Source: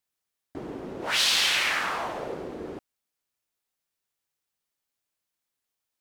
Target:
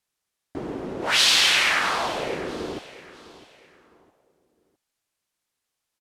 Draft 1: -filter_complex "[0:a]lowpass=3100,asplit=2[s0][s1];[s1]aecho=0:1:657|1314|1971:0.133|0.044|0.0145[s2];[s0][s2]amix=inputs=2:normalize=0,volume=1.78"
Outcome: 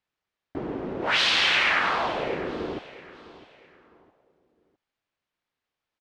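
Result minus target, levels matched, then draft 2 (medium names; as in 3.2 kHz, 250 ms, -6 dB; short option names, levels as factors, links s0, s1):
8 kHz band -11.0 dB
-filter_complex "[0:a]lowpass=12000,asplit=2[s0][s1];[s1]aecho=0:1:657|1314|1971:0.133|0.044|0.0145[s2];[s0][s2]amix=inputs=2:normalize=0,volume=1.78"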